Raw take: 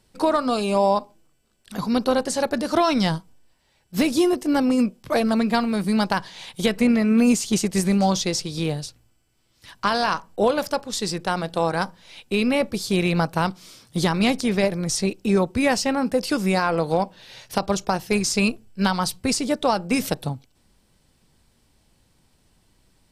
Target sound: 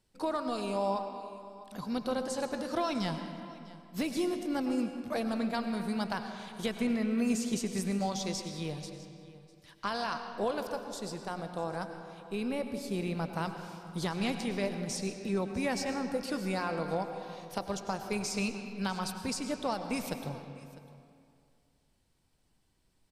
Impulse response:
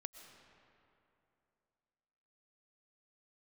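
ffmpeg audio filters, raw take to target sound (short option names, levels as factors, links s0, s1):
-filter_complex "[0:a]asettb=1/sr,asplit=3[s0][s1][s2];[s0]atrim=end=10.604[s3];[s1]atrim=start=10.6:end=13.34,asetpts=PTS-STARTPTS,afade=t=in:d=0.004:c=qsin,afade=t=out:st=2.736:d=0.004:c=qsin,equalizer=f=3100:w=0.46:g=-5.5[s4];[s2]atrim=start=13.336[s5];[s3][s4]acrossfade=d=0.004:c1=hsin:c2=qsin[s6];[s6][s5]acrossfade=d=0.004:c1=qsin:c2=hsin,aecho=1:1:651:0.1[s7];[1:a]atrim=start_sample=2205,asetrate=52920,aresample=44100[s8];[s7][s8]afir=irnorm=-1:irlink=0,volume=0.501"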